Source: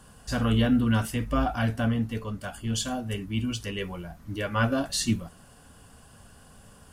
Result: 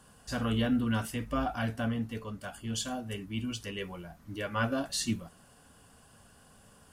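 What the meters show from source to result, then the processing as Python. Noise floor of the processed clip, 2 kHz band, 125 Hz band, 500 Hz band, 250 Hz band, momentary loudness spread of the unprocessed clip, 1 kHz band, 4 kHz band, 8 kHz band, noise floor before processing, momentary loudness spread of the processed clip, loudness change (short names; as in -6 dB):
-59 dBFS, -4.5 dB, -8.0 dB, -5.0 dB, -5.5 dB, 11 LU, -4.5 dB, -4.5 dB, -4.5 dB, -53 dBFS, 11 LU, -5.5 dB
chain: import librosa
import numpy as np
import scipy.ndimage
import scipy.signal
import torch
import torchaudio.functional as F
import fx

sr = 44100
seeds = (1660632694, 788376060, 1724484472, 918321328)

y = fx.low_shelf(x, sr, hz=100.0, db=-7.5)
y = F.gain(torch.from_numpy(y), -4.5).numpy()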